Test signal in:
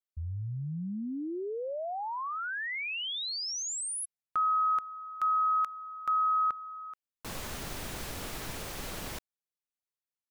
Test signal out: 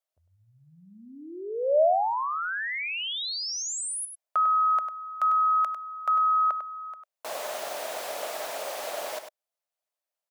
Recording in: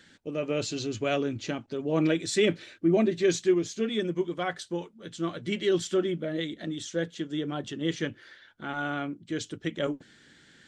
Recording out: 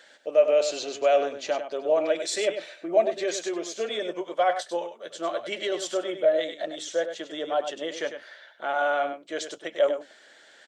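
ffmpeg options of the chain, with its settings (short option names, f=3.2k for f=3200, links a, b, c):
-af "alimiter=limit=-20.5dB:level=0:latency=1:release=95,highpass=f=620:t=q:w=4.9,aecho=1:1:99:0.355,volume=2.5dB"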